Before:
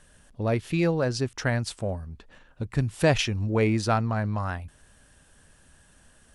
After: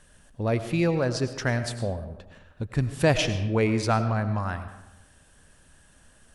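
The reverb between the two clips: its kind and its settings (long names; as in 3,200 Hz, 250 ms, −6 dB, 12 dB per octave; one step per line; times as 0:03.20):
comb and all-pass reverb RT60 0.98 s, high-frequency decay 0.6×, pre-delay 60 ms, DRR 10 dB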